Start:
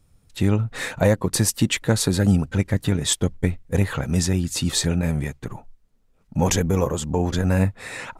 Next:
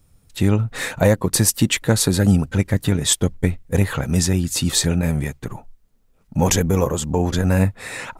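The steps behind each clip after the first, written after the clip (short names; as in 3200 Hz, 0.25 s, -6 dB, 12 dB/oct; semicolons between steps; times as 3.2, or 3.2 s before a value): high shelf 12000 Hz +9 dB; gain +2.5 dB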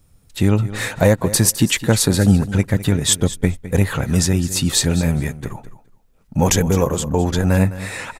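feedback echo 0.209 s, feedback 16%, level -15 dB; gain +1.5 dB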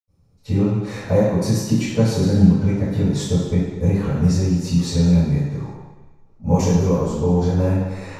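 reverb, pre-delay 77 ms; gain -11.5 dB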